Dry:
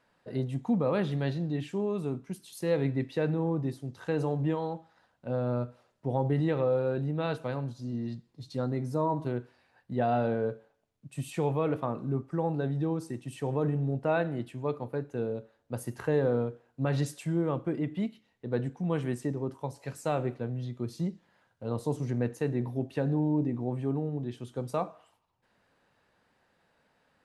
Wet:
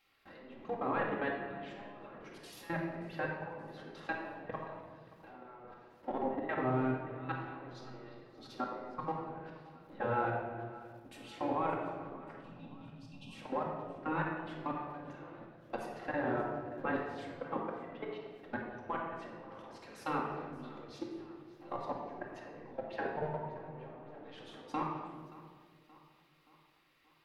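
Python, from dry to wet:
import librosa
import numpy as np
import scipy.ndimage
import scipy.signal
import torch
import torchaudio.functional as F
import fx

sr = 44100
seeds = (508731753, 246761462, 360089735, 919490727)

y = fx.law_mismatch(x, sr, coded='mu')
y = fx.env_lowpass_down(y, sr, base_hz=1900.0, full_db=-25.5)
y = fx.hum_notches(y, sr, base_hz=50, count=10)
y = fx.spec_gate(y, sr, threshold_db=-10, keep='weak')
y = fx.peak_eq(y, sr, hz=8000.0, db=-12.0, octaves=1.2)
y = fx.spec_erase(y, sr, start_s=12.38, length_s=0.94, low_hz=300.0, high_hz=2400.0)
y = fx.low_shelf(y, sr, hz=150.0, db=-5.5)
y = fx.level_steps(y, sr, step_db=20)
y = fx.echo_feedback(y, sr, ms=576, feedback_pct=52, wet_db=-19.5)
y = fx.room_shoebox(y, sr, seeds[0], volume_m3=1500.0, walls='mixed', distance_m=2.2)
y = F.gain(torch.from_numpy(y), 4.0).numpy()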